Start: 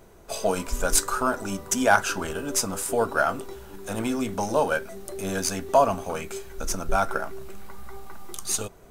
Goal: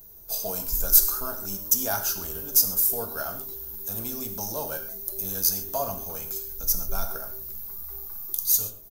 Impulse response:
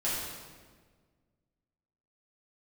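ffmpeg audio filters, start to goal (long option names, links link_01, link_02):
-filter_complex "[0:a]firequalizer=gain_entry='entry(110,0);entry(210,-7);entry(2000,-10);entry(5900,-4);entry(8400,-13);entry(14000,12)':delay=0.05:min_phase=1,aexciter=amount=2.6:drive=8.5:freq=3800,asplit=2[link_01][link_02];[1:a]atrim=start_sample=2205,atrim=end_sample=6615[link_03];[link_02][link_03]afir=irnorm=-1:irlink=0,volume=-11dB[link_04];[link_01][link_04]amix=inputs=2:normalize=0,volume=-6dB"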